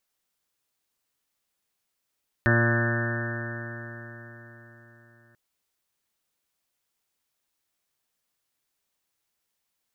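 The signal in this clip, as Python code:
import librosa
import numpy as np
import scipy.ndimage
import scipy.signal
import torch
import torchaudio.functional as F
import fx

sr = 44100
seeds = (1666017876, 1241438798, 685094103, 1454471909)

y = fx.additive_stiff(sr, length_s=2.89, hz=116.0, level_db=-20.5, upper_db=(-5.5, -6.0, -19.5, -8, -16.0, -20.0, -19, -18.0, -15, -15.0, -6.5, -7.0, -4.0), decay_s=4.34, stiffness=0.0011)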